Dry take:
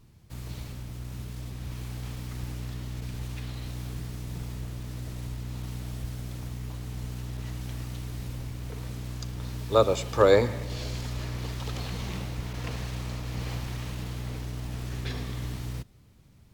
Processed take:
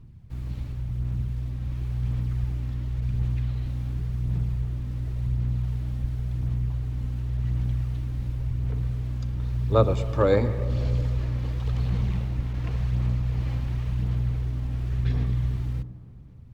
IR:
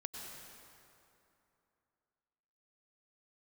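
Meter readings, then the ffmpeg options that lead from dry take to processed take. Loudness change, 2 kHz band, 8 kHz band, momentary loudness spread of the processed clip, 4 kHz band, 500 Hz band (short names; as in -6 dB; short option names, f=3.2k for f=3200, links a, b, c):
+4.5 dB, -4.5 dB, under -10 dB, 8 LU, -7.5 dB, -1.5 dB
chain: -filter_complex "[0:a]bass=f=250:g=11,treble=f=4k:g=-10,aphaser=in_gain=1:out_gain=1:delay=3.8:decay=0.3:speed=0.92:type=sinusoidal,asplit=2[a][b];[1:a]atrim=start_sample=2205,lowpass=1.1k,adelay=112[c];[b][c]afir=irnorm=-1:irlink=0,volume=-9.5dB[d];[a][d]amix=inputs=2:normalize=0,volume=-4dB"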